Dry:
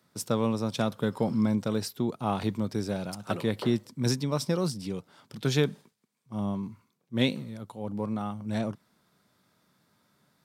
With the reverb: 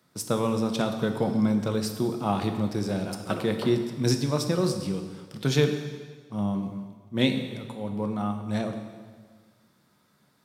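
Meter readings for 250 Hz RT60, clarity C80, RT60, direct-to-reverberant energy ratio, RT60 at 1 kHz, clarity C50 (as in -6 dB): 1.6 s, 9.0 dB, 1.5 s, 5.0 dB, 1.5 s, 7.5 dB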